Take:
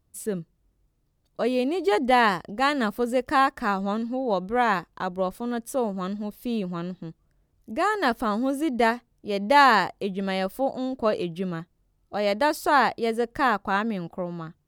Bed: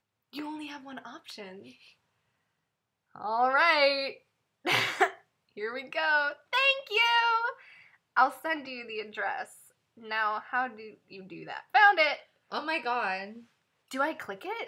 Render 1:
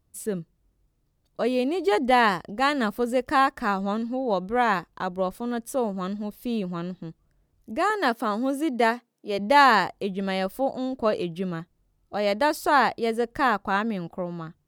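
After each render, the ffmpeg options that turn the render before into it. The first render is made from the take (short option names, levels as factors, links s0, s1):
-filter_complex "[0:a]asettb=1/sr,asplit=3[s0][s1][s2];[s0]atrim=end=7.904[s3];[s1]atrim=start=7.9:end=9.39,asetpts=PTS-STARTPTS,afade=t=in:d=0.004:c=qsin,afade=t=out:st=1.486:d=0.004:c=qsin,highpass=f=210:w=0.5412,highpass=f=210:w=1.3066[s4];[s2]atrim=start=9.386[s5];[s3][s4]acrossfade=d=0.004:c1=hsin:c2=qsin[s6];[s6][s5]acrossfade=d=0.004:c1=qsin:c2=hsin"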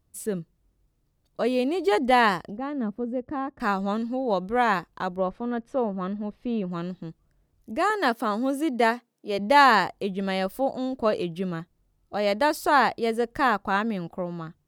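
-filter_complex "[0:a]asettb=1/sr,asplit=3[s0][s1][s2];[s0]atrim=end=2.574[s3];[s1]atrim=start=2.57:end=3.6,asetpts=PTS-STARTPTS,afade=t=in:d=0.004:c=qsin,afade=t=out:st=1.026:d=0.004:c=qsin,bandpass=f=160:t=q:w=0.69[s4];[s2]atrim=start=3.596[s5];[s3][s4]acrossfade=d=0.004:c1=hsin:c2=qsin[s6];[s6][s5]acrossfade=d=0.004:c1=qsin:c2=hsin,asplit=3[s7][s8][s9];[s7]afade=t=out:st=5.15:d=0.02[s10];[s8]lowpass=2400,afade=t=in:st=5.15:d=0.02,afade=t=out:st=6.7:d=0.02[s11];[s9]afade=t=in:st=6.7:d=0.02[s12];[s10][s11][s12]amix=inputs=3:normalize=0"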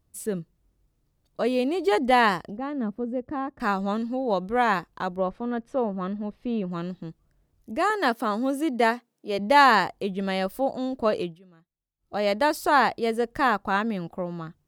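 -filter_complex "[0:a]asplit=3[s0][s1][s2];[s0]atrim=end=11.39,asetpts=PTS-STARTPTS,afade=t=out:st=11.22:d=0.17:silence=0.0630957[s3];[s1]atrim=start=11.39:end=11.98,asetpts=PTS-STARTPTS,volume=0.0631[s4];[s2]atrim=start=11.98,asetpts=PTS-STARTPTS,afade=t=in:d=0.17:silence=0.0630957[s5];[s3][s4][s5]concat=n=3:v=0:a=1"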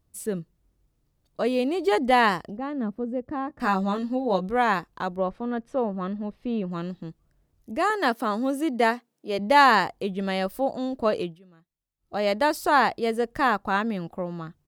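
-filter_complex "[0:a]asplit=3[s0][s1][s2];[s0]afade=t=out:st=3.49:d=0.02[s3];[s1]asplit=2[s4][s5];[s5]adelay=16,volume=0.562[s6];[s4][s6]amix=inputs=2:normalize=0,afade=t=in:st=3.49:d=0.02,afade=t=out:st=4.51:d=0.02[s7];[s2]afade=t=in:st=4.51:d=0.02[s8];[s3][s7][s8]amix=inputs=3:normalize=0"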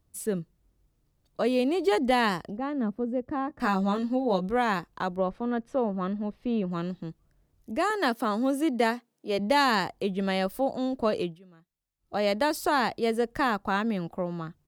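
-filter_complex "[0:a]acrossover=split=360|3000[s0][s1][s2];[s1]acompressor=threshold=0.0562:ratio=2.5[s3];[s0][s3][s2]amix=inputs=3:normalize=0"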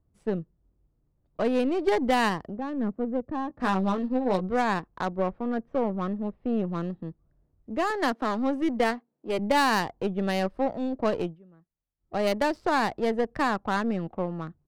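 -af "adynamicsmooth=sensitivity=4.5:basefreq=1200,aeval=exprs='0.299*(cos(1*acos(clip(val(0)/0.299,-1,1)))-cos(1*PI/2))+0.015*(cos(8*acos(clip(val(0)/0.299,-1,1)))-cos(8*PI/2))':c=same"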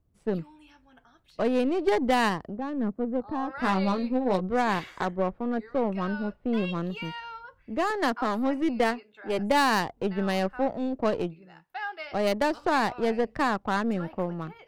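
-filter_complex "[1:a]volume=0.188[s0];[0:a][s0]amix=inputs=2:normalize=0"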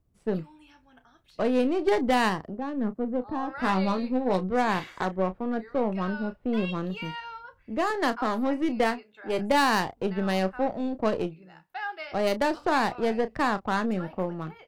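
-filter_complex "[0:a]asplit=2[s0][s1];[s1]adelay=32,volume=0.237[s2];[s0][s2]amix=inputs=2:normalize=0"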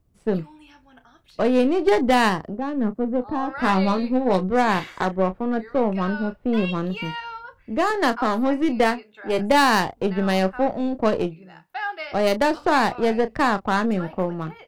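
-af "volume=1.88"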